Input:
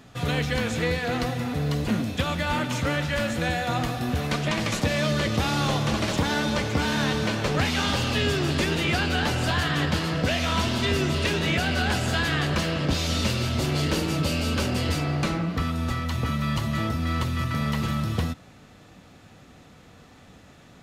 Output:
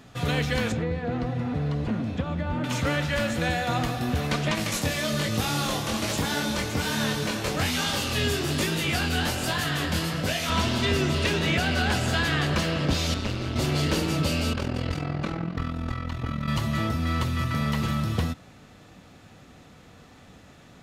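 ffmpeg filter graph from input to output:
-filter_complex "[0:a]asettb=1/sr,asplit=3[a][b][c];[a]atrim=end=0.724[d];[b]atrim=start=0.72:end=2.64,asetpts=PTS-STARTPTS,afade=t=in:d=0.004:c=qsin,afade=t=out:st=1.916:d=0.004:c=qsin,highpass=f=210:p=1,aemphasis=mode=reproduction:type=riaa,acrossover=split=600|1300[e][f][g];[e]acompressor=threshold=-26dB:ratio=4[h];[f]acompressor=threshold=-39dB:ratio=4[i];[g]acompressor=threshold=-45dB:ratio=4[j];[h][i][j]amix=inputs=3:normalize=0[k];[c]atrim=start=2.636[l];[d][k]acrossfade=d=0.004:c1=hsin:c2=qsin[m];[m][l]acrossfade=d=0.004:c1=qsin:c2=hsin,asettb=1/sr,asplit=3[n][o][p];[n]atrim=end=4.554[q];[o]atrim=start=4.55:end=10.5,asetpts=PTS-STARTPTS,afade=t=in:d=0.004:c=qsin,afade=t=out:st=5.946:d=0.004:c=qsin,equalizer=f=13k:t=o:w=1.4:g=12.5,flanger=delay=18.5:depth=6.4:speed=1.2[r];[p]atrim=start=10.496[s];[q][r]acrossfade=d=0.004:c1=hsin:c2=qsin[t];[t][s]acrossfade=d=0.004:c1=qsin:c2=hsin,asettb=1/sr,asplit=3[u][v][w];[u]atrim=end=13.144[x];[v]atrim=start=13.14:end=13.56,asetpts=PTS-STARTPTS,afade=t=in:d=0.004:c=qsin,afade=t=out:st=0.416:d=0.004:c=qsin,lowpass=f=3.1k:p=1,tremolo=f=200:d=0.857[y];[w]atrim=start=13.556[z];[x][y]acrossfade=d=0.004:c1=hsin:c2=qsin[aa];[aa][z]acrossfade=d=0.004:c1=qsin:c2=hsin,asettb=1/sr,asplit=3[ab][ac][ad];[ab]atrim=end=14.534[ae];[ac]atrim=start=14.53:end=16.48,asetpts=PTS-STARTPTS,afade=t=in:d=0.004:c=qsin,afade=t=out:st=1.946:d=0.004:c=qsin,lowpass=f=2.6k:p=1,tremolo=f=42:d=0.788[af];[ad]atrim=start=16.476[ag];[ae][af]acrossfade=d=0.004:c1=hsin:c2=qsin[ah];[ah][ag]acrossfade=d=0.004:c1=qsin:c2=hsin"

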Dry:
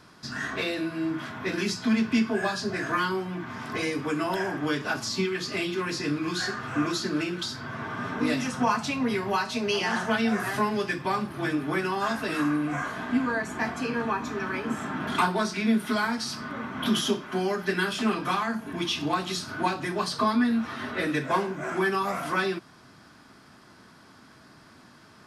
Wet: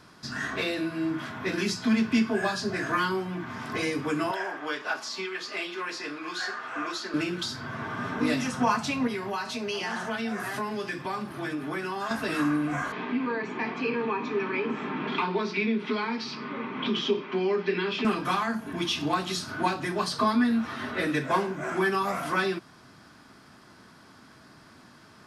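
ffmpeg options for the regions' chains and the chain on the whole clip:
-filter_complex "[0:a]asettb=1/sr,asplit=3[a][b][c];[a]atrim=end=4.314[d];[b]atrim=start=4.31:end=7.14,asetpts=PTS-STARTPTS,afade=t=in:d=0.004:c=qsin,afade=t=out:st=2.826:d=0.004:c=qsin,highpass=540,highshelf=f=6.4k:g=-11.5[e];[c]atrim=start=7.136[f];[d][e]acrossfade=d=0.004:c1=hsin:c2=qsin[g];[g][f]acrossfade=d=0.004:c1=qsin:c2=hsin,asettb=1/sr,asplit=3[h][i][j];[h]atrim=end=9.074[k];[i]atrim=start=9.07:end=12.11,asetpts=PTS-STARTPTS,afade=t=in:d=0.004:c=qsin,afade=t=out:st=3.036:d=0.004:c=qsin,highpass=f=140:p=1,acompressor=threshold=-31dB:ratio=2:attack=3.2:release=140:knee=1:detection=peak[l];[j]atrim=start=12.106[m];[k][l]acrossfade=d=0.004:c1=hsin:c2=qsin[n];[n][m]acrossfade=d=0.004:c1=qsin:c2=hsin,asettb=1/sr,asplit=3[o][p][q];[o]atrim=end=12.924[r];[p]atrim=start=12.92:end=18.05,asetpts=PTS-STARTPTS,afade=t=in:d=0.004:c=qsin,afade=t=out:st=5.126:d=0.004:c=qsin,acompressor=threshold=-27dB:ratio=2:attack=3.2:release=140:knee=1:detection=peak,highpass=f=150:w=0.5412,highpass=f=150:w=1.3066,equalizer=f=420:t=q:w=4:g=9,equalizer=f=670:t=q:w=4:g=-7,equalizer=f=950:t=q:w=4:g=3,equalizer=f=1.5k:t=q:w=4:g=-6,equalizer=f=2.4k:t=q:w=4:g=8,lowpass=f=4.5k:w=0.5412,lowpass=f=4.5k:w=1.3066[s];[q]atrim=start=18.046[t];[r][s]acrossfade=d=0.004:c1=hsin:c2=qsin[u];[u][t]acrossfade=d=0.004:c1=qsin:c2=hsin"

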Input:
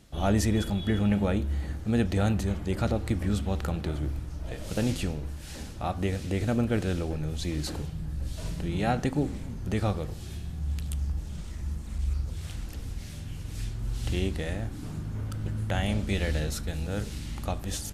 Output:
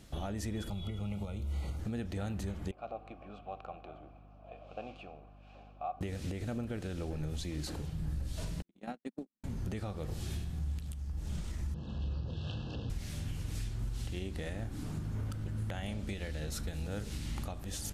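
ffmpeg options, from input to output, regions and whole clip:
-filter_complex "[0:a]asettb=1/sr,asplit=3[a][b][c];[a]atrim=end=0.694[d];[b]atrim=start=0.69:end=1.79,asetpts=PTS-STARTPTS,afade=t=in:d=0.004:c=qsin,afade=t=out:st=1.096:d=0.004:c=qsin,equalizer=f=270:w=2.1:g=-9,acrossover=split=180|3300[e][f][g];[e]acompressor=threshold=-30dB:ratio=4[h];[f]acompressor=threshold=-38dB:ratio=4[i];[g]acompressor=threshold=-54dB:ratio=4[j];[h][i][j]amix=inputs=3:normalize=0,asuperstop=centerf=1700:order=20:qfactor=3.5[k];[c]atrim=start=1.786[l];[d][k]acrossfade=d=0.004:c1=hsin:c2=qsin[m];[m][l]acrossfade=d=0.004:c1=qsin:c2=hsin,asettb=1/sr,asplit=3[n][o][p];[n]atrim=end=2.714[q];[o]atrim=start=2.71:end=6.01,asetpts=PTS-STARTPTS,afade=t=in:d=0.004:c=qsin,afade=t=out:st=3.296:d=0.004:c=qsin,adynamicsmooth=sensitivity=5.5:basefreq=3.8k,asplit=3[r][s][t];[r]bandpass=f=730:t=q:w=8,volume=0dB[u];[s]bandpass=f=1.09k:t=q:w=8,volume=-6dB[v];[t]bandpass=f=2.44k:t=q:w=8,volume=-9dB[w];[u][v][w]amix=inputs=3:normalize=0,aeval=exprs='val(0)+0.00158*(sin(2*PI*50*n/s)+sin(2*PI*2*50*n/s)/2+sin(2*PI*3*50*n/s)/3+sin(2*PI*4*50*n/s)/4+sin(2*PI*5*50*n/s)/5)':c=same[x];[p]atrim=start=6.006[y];[q][x]acrossfade=d=0.004:c1=hsin:c2=qsin[z];[z][y]acrossfade=d=0.004:c1=qsin:c2=hsin,asettb=1/sr,asplit=3[aa][ab][ac];[aa]atrim=end=8.624[ad];[ab]atrim=start=8.62:end=9.44,asetpts=PTS-STARTPTS,afade=t=in:d=0.004:c=qsin,afade=t=out:st=0.816:d=0.004:c=qsin,agate=range=-59dB:threshold=-24dB:ratio=16:release=100:detection=peak,lowshelf=f=160:t=q:w=3:g=-10.5[ae];[ac]atrim=start=9.436[af];[ad][ae]acrossfade=d=0.004:c1=hsin:c2=qsin[ag];[ag][af]acrossfade=d=0.004:c1=qsin:c2=hsin,asettb=1/sr,asplit=3[ah][ai][aj];[ah]atrim=end=11.744[ak];[ai]atrim=start=11.74:end=12.9,asetpts=PTS-STARTPTS,afade=t=in:d=0.004:c=qsin,afade=t=out:st=1.156:d=0.004:c=qsin,aeval=exprs='val(0)+0.5*0.00631*sgn(val(0))':c=same,asuperstop=centerf=2100:order=20:qfactor=2.4,highpass=100,equalizer=f=130:t=q:w=4:g=7,equalizer=f=500:t=q:w=4:g=4,equalizer=f=1.4k:t=q:w=4:g=-9,equalizer=f=2.1k:t=q:w=4:g=9,lowpass=f=4.1k:w=0.5412,lowpass=f=4.1k:w=1.3066[al];[aj]atrim=start=12.896[am];[ak][al]acrossfade=d=0.004:c1=hsin:c2=qsin[an];[an][am]acrossfade=d=0.004:c1=qsin:c2=hsin,acompressor=threshold=-32dB:ratio=6,alimiter=level_in=5.5dB:limit=-24dB:level=0:latency=1:release=356,volume=-5.5dB,volume=1dB"

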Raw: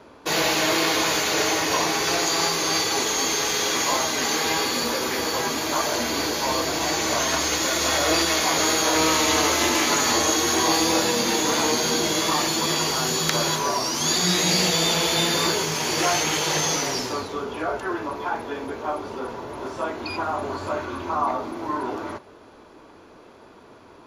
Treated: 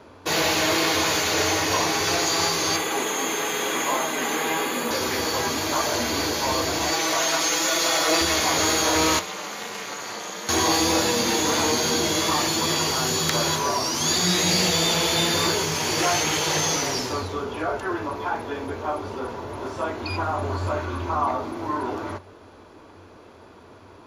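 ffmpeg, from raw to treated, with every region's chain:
-filter_complex "[0:a]asettb=1/sr,asplit=3[a][b][c];[a]atrim=end=2.764[d];[b]atrim=start=2.76:end=4.91,asetpts=PTS-STARTPTS,afade=t=in:d=0.004:c=qsin,afade=t=out:st=2.146:d=0.004:c=qsin,highpass=f=160:w=0.5412,highpass=f=160:w=1.3066,equalizer=f=4.6k:w=2.7:g=-12.5,bandreject=f=5.7k:w=5.2[e];[c]atrim=start=4.906[f];[d][e]acrossfade=d=0.004:c1=hsin:c2=qsin[g];[g][f]acrossfade=d=0.004:c1=qsin:c2=hsin,asettb=1/sr,asplit=3[h][i][j];[h]atrim=end=6.914[k];[i]atrim=start=6.91:end=8.21,asetpts=PTS-STARTPTS,afade=t=in:d=0.004:c=qsin,afade=t=out:st=1.296:d=0.004:c=qsin,highpass=f=420:p=1,aecho=1:1:6.1:0.61,atrim=end_sample=57330[l];[j]atrim=start=8.206[m];[k][l]acrossfade=d=0.004:c1=hsin:c2=qsin[n];[n][m]acrossfade=d=0.004:c1=qsin:c2=hsin,asettb=1/sr,asplit=3[o][p][q];[o]atrim=end=9.194[r];[p]atrim=start=9.19:end=10.49,asetpts=PTS-STARTPTS,afade=t=in:d=0.004:c=qsin,afade=t=out:st=1.296:d=0.004:c=qsin,aeval=exprs='val(0)*sin(2*PI*130*n/s)':c=same,acrossover=split=550|1100|2800[s][t][u][v];[s]acompressor=threshold=-42dB:ratio=3[w];[t]acompressor=threshold=-43dB:ratio=3[x];[u]acompressor=threshold=-39dB:ratio=3[y];[v]acompressor=threshold=-41dB:ratio=3[z];[w][x][y][z]amix=inputs=4:normalize=0,highpass=220[aa];[q]atrim=start=10.486[ab];[r][aa]acrossfade=d=0.004:c1=hsin:c2=qsin[ac];[ac][ab]acrossfade=d=0.004:c1=qsin:c2=hsin,equalizer=f=90:w=4.9:g=14,acontrast=89,volume=-7dB"

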